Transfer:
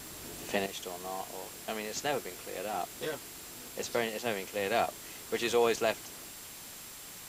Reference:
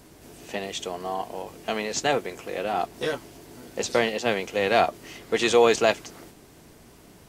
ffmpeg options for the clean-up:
-af "adeclick=t=4,bandreject=f=7500:w=30,afwtdn=0.005,asetnsamples=n=441:p=0,asendcmd='0.66 volume volume 9dB',volume=1"

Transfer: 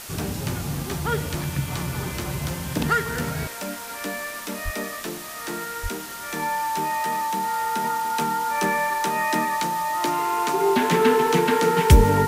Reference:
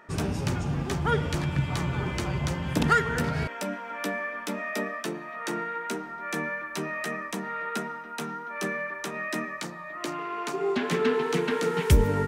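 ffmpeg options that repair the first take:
-filter_complex "[0:a]bandreject=f=890:w=30,asplit=3[s0][s1][s2];[s0]afade=t=out:st=4.64:d=0.02[s3];[s1]highpass=f=140:w=0.5412,highpass=f=140:w=1.3066,afade=t=in:st=4.64:d=0.02,afade=t=out:st=4.76:d=0.02[s4];[s2]afade=t=in:st=4.76:d=0.02[s5];[s3][s4][s5]amix=inputs=3:normalize=0,asplit=3[s6][s7][s8];[s6]afade=t=out:st=5.82:d=0.02[s9];[s7]highpass=f=140:w=0.5412,highpass=f=140:w=1.3066,afade=t=in:st=5.82:d=0.02,afade=t=out:st=5.94:d=0.02[s10];[s8]afade=t=in:st=5.94:d=0.02[s11];[s9][s10][s11]amix=inputs=3:normalize=0,afwtdn=0.014,asetnsamples=n=441:p=0,asendcmd='7.84 volume volume -6dB',volume=1"

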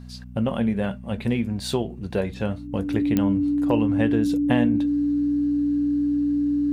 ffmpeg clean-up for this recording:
-af "adeclick=t=4,bandreject=f=61.6:t=h:w=4,bandreject=f=123.2:t=h:w=4,bandreject=f=184.8:t=h:w=4,bandreject=f=246.4:t=h:w=4,bandreject=f=290:w=30"

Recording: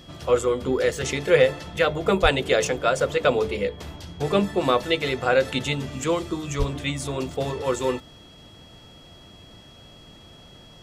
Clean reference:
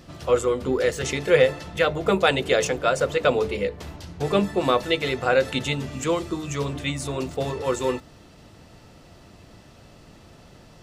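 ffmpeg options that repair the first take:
-filter_complex "[0:a]bandreject=f=3300:w=30,asplit=3[s0][s1][s2];[s0]afade=t=out:st=2.22:d=0.02[s3];[s1]highpass=f=140:w=0.5412,highpass=f=140:w=1.3066,afade=t=in:st=2.22:d=0.02,afade=t=out:st=2.34:d=0.02[s4];[s2]afade=t=in:st=2.34:d=0.02[s5];[s3][s4][s5]amix=inputs=3:normalize=0,asplit=3[s6][s7][s8];[s6]afade=t=out:st=6.58:d=0.02[s9];[s7]highpass=f=140:w=0.5412,highpass=f=140:w=1.3066,afade=t=in:st=6.58:d=0.02,afade=t=out:st=6.7:d=0.02[s10];[s8]afade=t=in:st=6.7:d=0.02[s11];[s9][s10][s11]amix=inputs=3:normalize=0"

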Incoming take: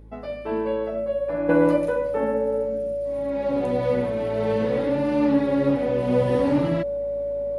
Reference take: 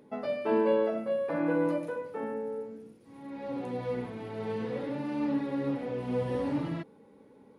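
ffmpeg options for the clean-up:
-af "bandreject=f=53.9:t=h:w=4,bandreject=f=107.8:t=h:w=4,bandreject=f=161.7:t=h:w=4,bandreject=f=215.6:t=h:w=4,bandreject=f=269.5:t=h:w=4,bandreject=f=323.4:t=h:w=4,bandreject=f=570:w=30,asetnsamples=n=441:p=0,asendcmd='1.49 volume volume -9.5dB',volume=1"

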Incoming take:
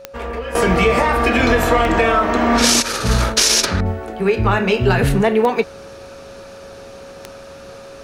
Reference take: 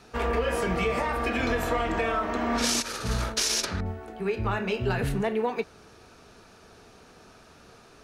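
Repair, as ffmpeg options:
-af "adeclick=t=4,bandreject=f=550:w=30,asetnsamples=n=441:p=0,asendcmd='0.55 volume volume -12dB',volume=1"

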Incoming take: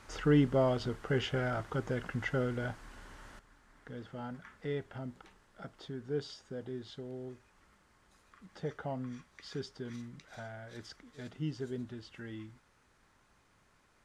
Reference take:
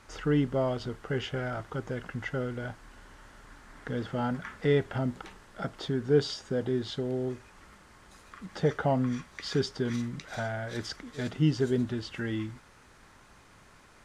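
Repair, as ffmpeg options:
-af "asetnsamples=n=441:p=0,asendcmd='3.39 volume volume 12dB',volume=1"

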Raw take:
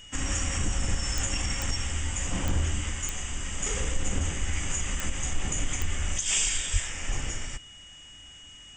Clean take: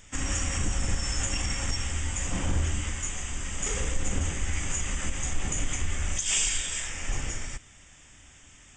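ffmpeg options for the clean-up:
-filter_complex "[0:a]adeclick=t=4,bandreject=f=2900:w=30,asplit=3[s0][s1][s2];[s0]afade=t=out:st=6.72:d=0.02[s3];[s1]highpass=f=140:w=0.5412,highpass=f=140:w=1.3066,afade=t=in:st=6.72:d=0.02,afade=t=out:st=6.84:d=0.02[s4];[s2]afade=t=in:st=6.84:d=0.02[s5];[s3][s4][s5]amix=inputs=3:normalize=0"

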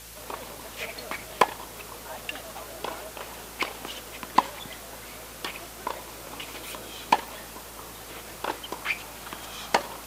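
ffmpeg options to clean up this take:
-af "adeclick=t=4,bandreject=f=55:t=h:w=4,bandreject=f=110:t=h:w=4,bandreject=f=165:t=h:w=4,bandreject=f=490:w=30,afwtdn=0.0063"

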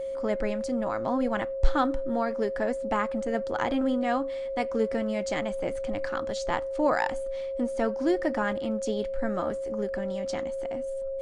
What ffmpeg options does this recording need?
-af "bandreject=f=540:w=30"

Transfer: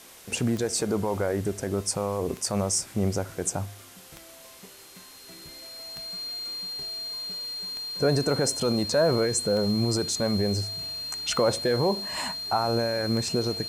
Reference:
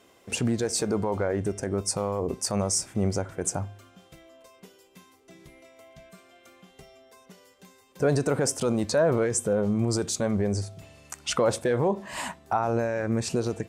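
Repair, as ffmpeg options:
-af "adeclick=t=4,bandreject=f=4200:w=30,afwtdn=0.004"

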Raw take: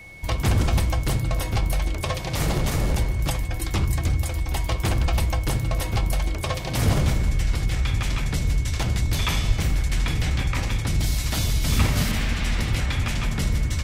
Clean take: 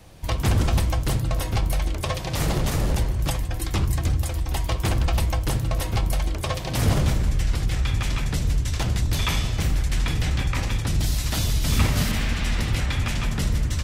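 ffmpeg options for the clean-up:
-filter_complex "[0:a]bandreject=f=2200:w=30,asplit=3[s0][s1][s2];[s0]afade=t=out:st=9.47:d=0.02[s3];[s1]highpass=f=140:w=0.5412,highpass=f=140:w=1.3066,afade=t=in:st=9.47:d=0.02,afade=t=out:st=9.59:d=0.02[s4];[s2]afade=t=in:st=9.59:d=0.02[s5];[s3][s4][s5]amix=inputs=3:normalize=0"

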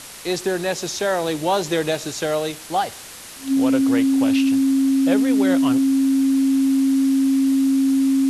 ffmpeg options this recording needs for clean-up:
-af "bandreject=f=270:w=30,afwtdn=0.016"

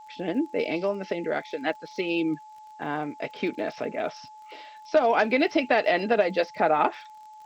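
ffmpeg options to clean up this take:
-af "adeclick=t=4,bandreject=f=860:w=30,agate=range=0.0891:threshold=0.0112"

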